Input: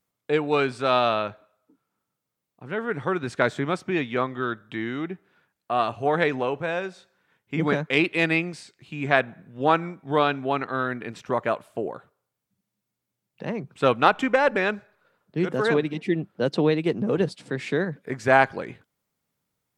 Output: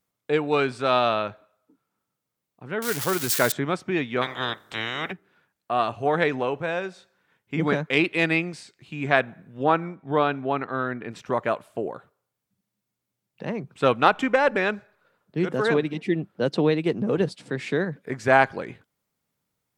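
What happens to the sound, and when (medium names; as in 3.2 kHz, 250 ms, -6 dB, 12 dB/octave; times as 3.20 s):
2.82–3.52 s: zero-crossing glitches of -16 dBFS
4.21–5.11 s: spectral peaks clipped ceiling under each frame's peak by 28 dB
9.63–11.11 s: treble shelf 3.6 kHz -11 dB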